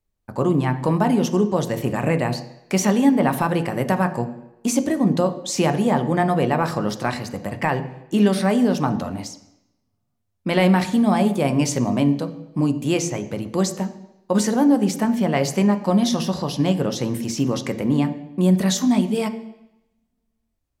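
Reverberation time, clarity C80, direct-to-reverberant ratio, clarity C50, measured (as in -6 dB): 0.85 s, 15.5 dB, 8.0 dB, 13.0 dB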